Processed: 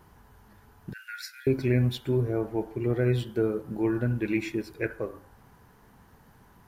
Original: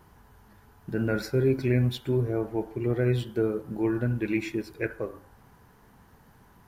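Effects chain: 0.93–1.47 steep high-pass 1500 Hz 48 dB/oct

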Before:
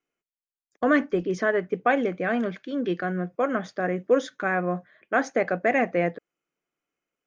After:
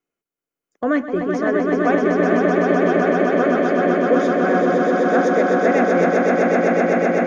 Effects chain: bell 2900 Hz -5.5 dB 2.6 oct; swelling echo 0.127 s, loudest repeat 8, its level -4 dB; gain +2.5 dB

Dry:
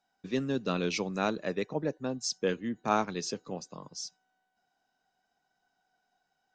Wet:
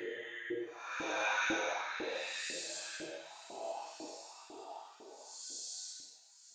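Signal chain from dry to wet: spectral gate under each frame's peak -10 dB weak; Paulstretch 4×, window 0.25 s, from 2.6; thin delay 0.923 s, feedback 46%, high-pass 3300 Hz, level -14 dB; reverb RT60 0.40 s, pre-delay 6 ms, DRR 8.5 dB; LFO high-pass saw up 2 Hz 300–1600 Hz; bell 1100 Hz -11 dB 0.35 oct; gain +2.5 dB

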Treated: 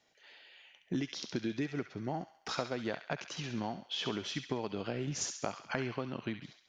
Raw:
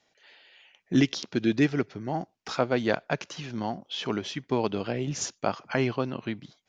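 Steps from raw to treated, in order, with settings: compressor 10:1, threshold -29 dBFS, peak gain reduction 13 dB; on a send: thin delay 68 ms, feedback 53%, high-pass 1500 Hz, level -7 dB; on the sum: gain -2.5 dB

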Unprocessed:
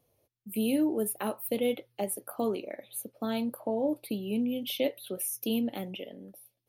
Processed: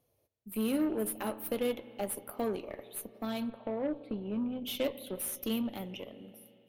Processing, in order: 3.5–4.65 tape spacing loss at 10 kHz 31 dB; spring tank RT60 3.2 s, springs 32/50 ms, chirp 45 ms, DRR 13.5 dB; added harmonics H 8 -24 dB, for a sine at -17 dBFS; gain -3.5 dB

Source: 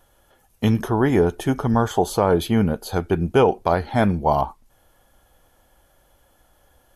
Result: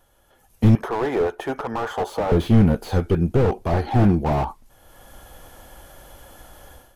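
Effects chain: 0.75–2.32 three-band isolator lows -22 dB, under 430 Hz, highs -14 dB, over 2400 Hz; AGC gain up to 16 dB; 3.73–4.19 small resonant body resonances 330/760/1100 Hz, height 8 dB, ringing for 30 ms; slew limiter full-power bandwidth 81 Hz; gain -2 dB

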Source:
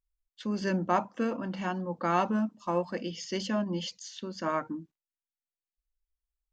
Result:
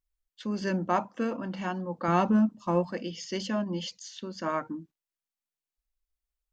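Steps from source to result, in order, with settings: 2.08–2.91 low shelf 260 Hz +10.5 dB

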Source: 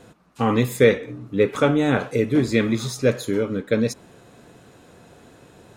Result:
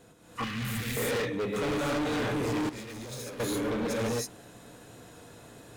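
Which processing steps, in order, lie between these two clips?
high shelf 7600 Hz +9.5 dB; non-linear reverb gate 0.35 s rising, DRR -7 dB; 0.41–0.67 spectral repair 910–3000 Hz after; hard clip -19 dBFS, distortion -4 dB; 0.44–0.97 band shelf 600 Hz -15 dB 2.3 oct; 2.69–3.4 negative-ratio compressor -28 dBFS, ratio -0.5; gain -9 dB

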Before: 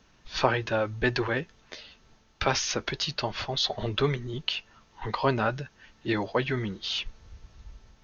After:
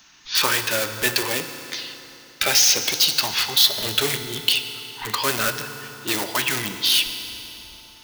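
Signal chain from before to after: LFO notch saw up 0.63 Hz 470–1900 Hz; in parallel at -6 dB: wrapped overs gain 25.5 dB; on the sum: tilt +3.5 dB/oct; notches 50/100/150 Hz; FDN reverb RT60 3.4 s, high-frequency decay 0.8×, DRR 7.5 dB; gain +4 dB

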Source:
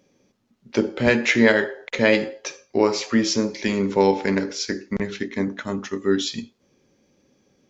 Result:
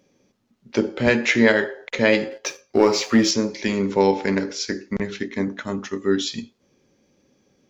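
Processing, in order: 2.31–3.31 sample leveller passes 1

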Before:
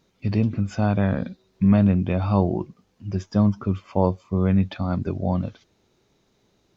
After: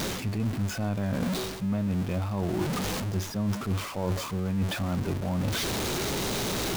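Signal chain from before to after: zero-crossing step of -23.5 dBFS; reverse; compressor, threshold -26 dBFS, peak gain reduction 13.5 dB; reverse

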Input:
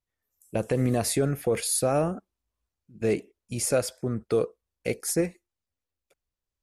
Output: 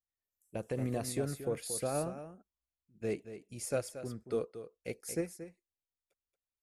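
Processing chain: echo 0.229 s -8 dB; upward expander 1.5:1, over -32 dBFS; gain -9 dB

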